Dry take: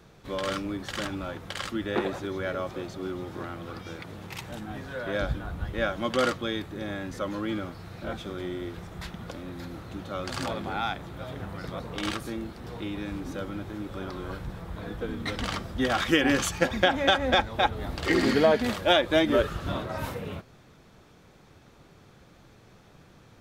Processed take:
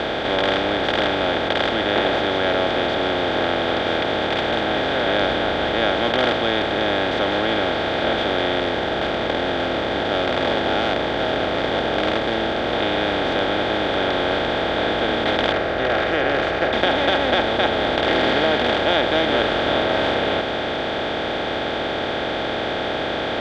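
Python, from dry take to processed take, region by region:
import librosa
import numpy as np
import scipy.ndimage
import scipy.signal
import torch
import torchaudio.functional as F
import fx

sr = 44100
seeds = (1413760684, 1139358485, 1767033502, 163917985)

y = fx.chain(x, sr, fx.median_filter(points=15),
    fx.notch_cascade(direction='falling', hz=1.7), at=(8.6, 12.73))
y = fx.chain(y, sr, fx.lowpass(hz=2000.0, slope=12),
    fx.fixed_phaser(hz=910.0, stages=6), at=(15.52, 16.73))
y = fx.bin_compress(y, sr, power=0.2)
y = scipy.signal.sosfilt(scipy.signal.cheby1(2, 1.0, 4000.0, 'lowpass', fs=sr, output='sos'), y)
y = fx.low_shelf(y, sr, hz=69.0, db=-10.5)
y = y * 10.0 ** (-3.0 / 20.0)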